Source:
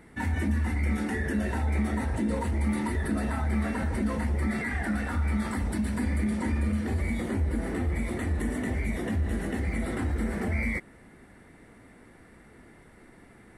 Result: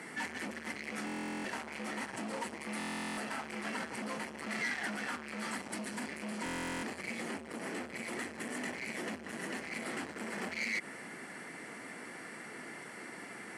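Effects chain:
hard clipping −30.5 dBFS, distortion −8 dB
low-pass filter 7,100 Hz 12 dB per octave
brickwall limiter −41 dBFS, peak gain reduction 11 dB
high-pass filter 140 Hz 24 dB per octave
spectral tilt +3 dB per octave
notch filter 3,700 Hz, Q 6.9
buffer that repeats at 0:01.05/0:02.78/0:06.44, samples 1,024, times 16
level +9 dB

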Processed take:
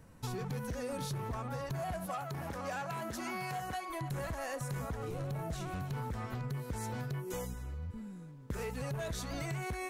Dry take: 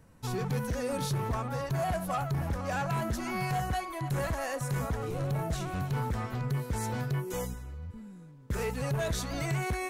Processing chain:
0:02.06–0:03.90: high-pass filter 280 Hz 6 dB per octave
downward compressor, threshold −37 dBFS, peak gain reduction 9 dB
level +1 dB

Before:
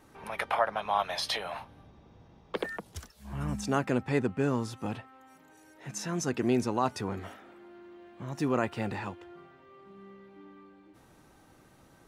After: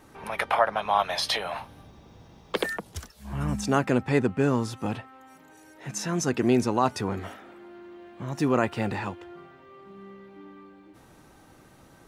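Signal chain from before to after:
0:01.63–0:02.73: high-shelf EQ 5,300 Hz → 3,300 Hz +11.5 dB
level +5 dB

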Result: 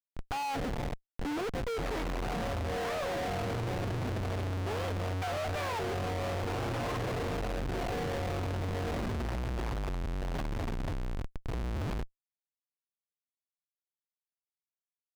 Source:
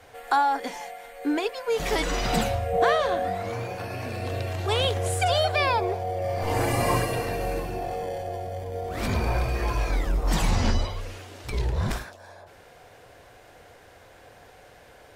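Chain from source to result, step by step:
head-to-tape spacing loss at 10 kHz 25 dB
comparator with hysteresis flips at −35 dBFS
high-shelf EQ 6,700 Hz −11.5 dB
level −5 dB

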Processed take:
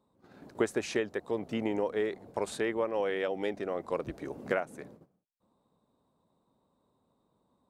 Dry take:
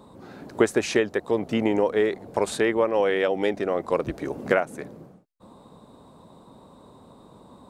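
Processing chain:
noise gate −42 dBFS, range −15 dB
level −9 dB

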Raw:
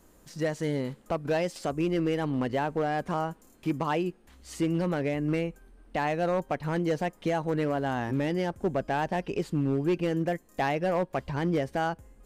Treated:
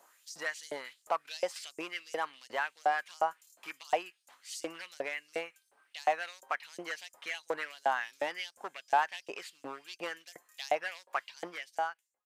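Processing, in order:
fade-out on the ending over 0.93 s
auto-filter high-pass saw up 2.8 Hz 620–7,500 Hz
level −1.5 dB

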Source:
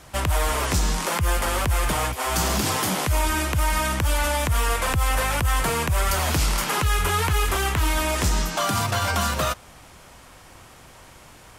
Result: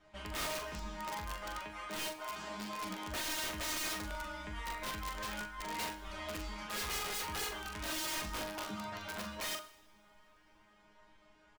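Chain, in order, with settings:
low-pass filter 3,700 Hz 12 dB per octave
reverb reduction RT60 0.58 s
0:01.59–0:02.77: high-pass filter 280 Hz 6 dB per octave
0:05.28–0:06.06: compressor whose output falls as the input rises −26 dBFS, ratio −0.5
resonators tuned to a chord G#3 fifth, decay 0.33 s
wrap-around overflow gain 34 dB
double-tracking delay 42 ms −6.5 dB
convolution reverb, pre-delay 3 ms, DRR 12.5 dB

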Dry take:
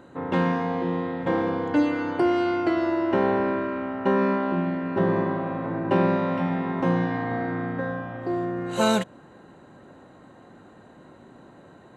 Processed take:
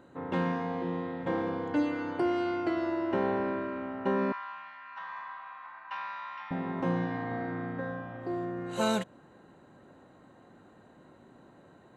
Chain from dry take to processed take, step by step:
0:04.32–0:06.51: elliptic band-pass filter 1,000–5,900 Hz, stop band 40 dB
level −7 dB

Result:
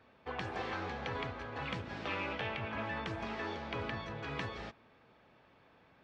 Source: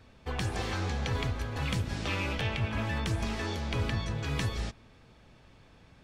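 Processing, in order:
high-pass filter 760 Hz 6 dB per octave
head-to-tape spacing loss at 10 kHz 34 dB
level +4 dB

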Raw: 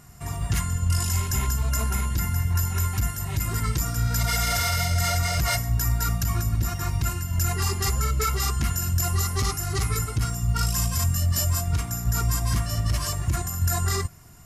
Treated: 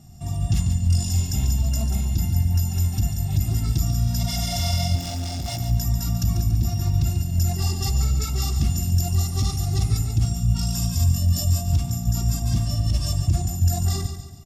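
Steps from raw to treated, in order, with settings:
low-shelf EQ 420 Hz +7.5 dB
0:04.95–0:05.60: hard clipping −23 dBFS, distortion −17 dB
repeating echo 142 ms, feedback 42%, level −9 dB
convolution reverb RT60 0.40 s, pre-delay 3 ms, DRR 18 dB
level −9 dB

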